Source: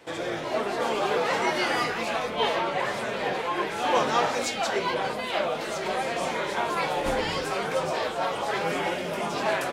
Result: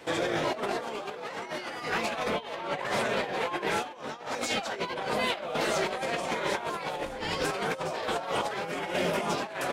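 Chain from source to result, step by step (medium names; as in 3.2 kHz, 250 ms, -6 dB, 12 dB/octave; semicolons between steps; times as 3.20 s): compressor with a negative ratio -31 dBFS, ratio -0.5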